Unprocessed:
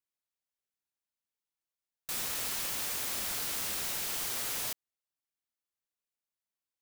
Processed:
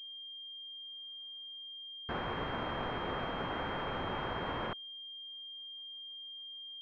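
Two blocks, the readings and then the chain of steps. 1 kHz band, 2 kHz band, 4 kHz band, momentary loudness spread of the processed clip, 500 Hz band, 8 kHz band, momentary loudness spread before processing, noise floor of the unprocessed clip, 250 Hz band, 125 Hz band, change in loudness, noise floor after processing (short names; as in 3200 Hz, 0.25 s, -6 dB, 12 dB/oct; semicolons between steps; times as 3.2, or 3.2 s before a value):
+8.5 dB, +1.0 dB, +1.0 dB, 7 LU, +9.5 dB, under -40 dB, 5 LU, under -85 dBFS, +10.0 dB, +10.5 dB, -7.5 dB, -47 dBFS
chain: rotary speaker horn 0.6 Hz, later 6.7 Hz, at 4.94; wrapped overs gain 40.5 dB; pulse-width modulation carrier 3200 Hz; gain +18 dB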